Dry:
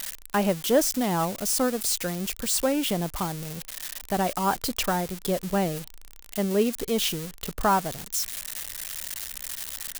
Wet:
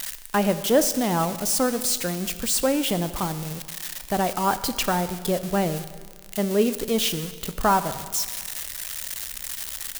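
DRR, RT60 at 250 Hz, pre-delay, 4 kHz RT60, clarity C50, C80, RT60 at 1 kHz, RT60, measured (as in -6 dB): 11.5 dB, 1.7 s, 5 ms, 1.6 s, 12.5 dB, 14.0 dB, 1.7 s, 1.7 s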